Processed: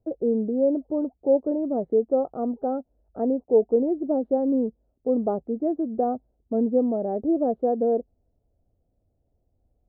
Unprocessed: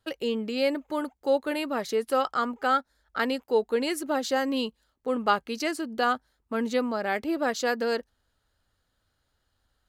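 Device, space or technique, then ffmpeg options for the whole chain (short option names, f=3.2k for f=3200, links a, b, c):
under water: -af "lowpass=f=530:w=0.5412,lowpass=f=530:w=1.3066,equalizer=f=700:t=o:w=0.29:g=10,volume=6dB"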